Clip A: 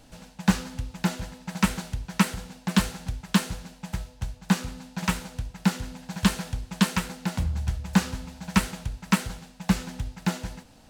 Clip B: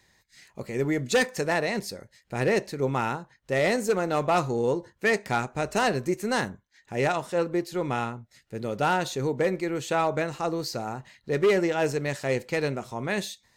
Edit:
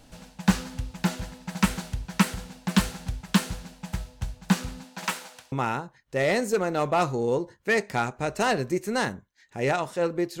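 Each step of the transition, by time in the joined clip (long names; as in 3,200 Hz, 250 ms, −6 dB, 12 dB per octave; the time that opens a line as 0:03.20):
clip A
0:04.83–0:05.52: high-pass filter 240 Hz → 880 Hz
0:05.52: continue with clip B from 0:02.88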